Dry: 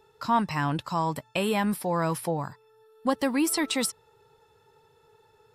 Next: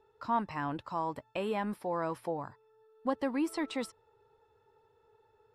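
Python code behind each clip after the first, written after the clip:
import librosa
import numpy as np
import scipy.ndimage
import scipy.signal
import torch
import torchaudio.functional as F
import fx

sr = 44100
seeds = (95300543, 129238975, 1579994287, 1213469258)

y = fx.lowpass(x, sr, hz=1300.0, slope=6)
y = fx.peak_eq(y, sr, hz=160.0, db=-10.0, octaves=0.76)
y = y * 10.0 ** (-4.5 / 20.0)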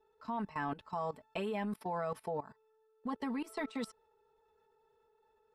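y = x + 0.91 * np.pad(x, (int(4.6 * sr / 1000.0), 0))[:len(x)]
y = fx.level_steps(y, sr, step_db=18)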